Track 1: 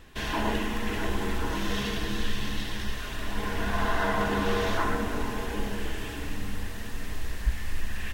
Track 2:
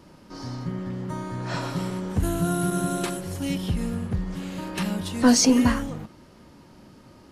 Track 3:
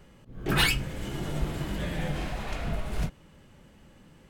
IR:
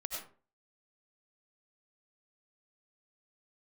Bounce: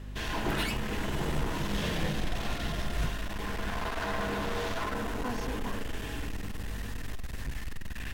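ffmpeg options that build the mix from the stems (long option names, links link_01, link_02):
-filter_complex "[0:a]acontrast=66,aeval=exprs='val(0)+0.0251*(sin(2*PI*50*n/s)+sin(2*PI*2*50*n/s)/2+sin(2*PI*3*50*n/s)/3+sin(2*PI*4*50*n/s)/4+sin(2*PI*5*50*n/s)/5)':channel_layout=same,asoftclip=type=hard:threshold=-21.5dB,volume=-10.5dB,asplit=2[link_01][link_02];[link_02]volume=-8dB[link_03];[1:a]bandpass=frequency=940:width_type=q:width=1.2:csg=0,volume=-13dB[link_04];[2:a]alimiter=limit=-22dB:level=0:latency=1:release=494,volume=-1dB[link_05];[3:a]atrim=start_sample=2205[link_06];[link_03][link_06]afir=irnorm=-1:irlink=0[link_07];[link_01][link_04][link_05][link_07]amix=inputs=4:normalize=0"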